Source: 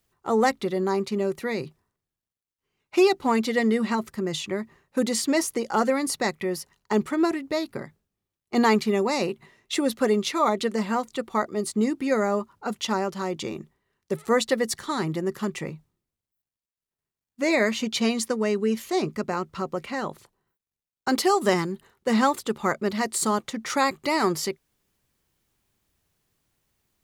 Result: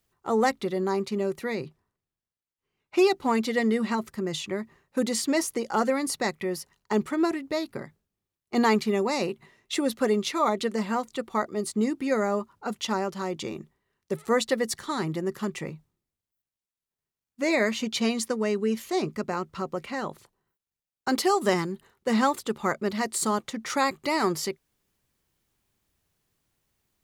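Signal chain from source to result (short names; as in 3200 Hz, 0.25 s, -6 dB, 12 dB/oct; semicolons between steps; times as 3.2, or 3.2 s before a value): 1.55–2.99 high shelf 5300 Hz -6.5 dB; gain -2 dB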